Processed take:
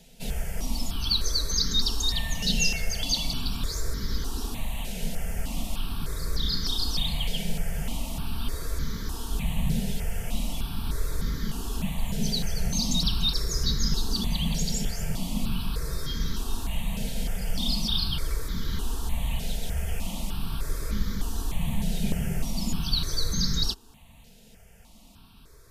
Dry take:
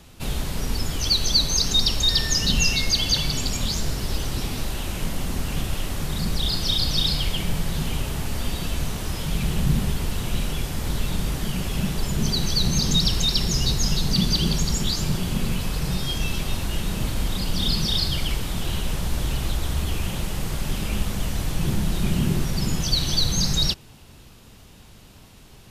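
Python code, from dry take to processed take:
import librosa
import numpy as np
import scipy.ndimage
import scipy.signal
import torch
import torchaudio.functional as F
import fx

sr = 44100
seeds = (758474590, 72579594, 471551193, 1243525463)

y = x + 0.38 * np.pad(x, (int(4.4 * sr / 1000.0), 0))[:len(x)]
y = fx.phaser_held(y, sr, hz=3.3, low_hz=310.0, high_hz=2700.0)
y = F.gain(torch.from_numpy(y), -3.5).numpy()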